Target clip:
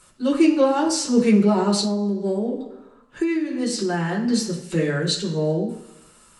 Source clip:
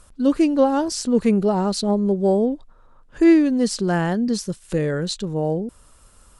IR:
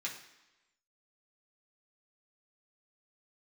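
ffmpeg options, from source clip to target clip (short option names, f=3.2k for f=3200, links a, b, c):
-filter_complex "[1:a]atrim=start_sample=2205,asetrate=48510,aresample=44100[a];[0:a][a]afir=irnorm=-1:irlink=0,asettb=1/sr,asplit=3[b][c][d];[b]atrim=end=1.824[e];[c]atrim=start=1.82:end=4.28,asetpts=PTS-STARTPTS,afade=t=in:d=0.004:c=qsin,afade=t=out:st=2.456:d=0.004:c=qsin,acompressor=threshold=-23dB:ratio=12[f];[d]atrim=start=4.276[g];[e][f]acrossfade=d=0.004:c1=hsin:c2=qsin[h];[h][g]acrossfade=d=0.004:c1=qsin:c2=hsin,volume=3.5dB"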